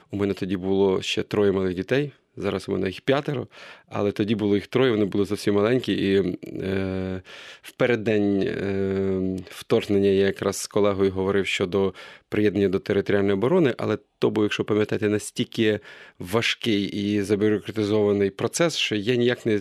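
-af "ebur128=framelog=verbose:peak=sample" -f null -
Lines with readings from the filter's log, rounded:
Integrated loudness:
  I:         -23.5 LUFS
  Threshold: -33.8 LUFS
Loudness range:
  LRA:         2.3 LU
  Threshold: -43.9 LUFS
  LRA low:   -25.2 LUFS
  LRA high:  -22.9 LUFS
Sample peak:
  Peak:       -7.4 dBFS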